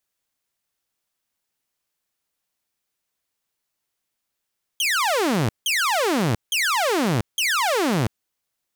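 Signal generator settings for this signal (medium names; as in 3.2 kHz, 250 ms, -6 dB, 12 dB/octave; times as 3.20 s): burst of laser zaps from 3.3 kHz, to 100 Hz, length 0.69 s saw, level -16 dB, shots 4, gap 0.17 s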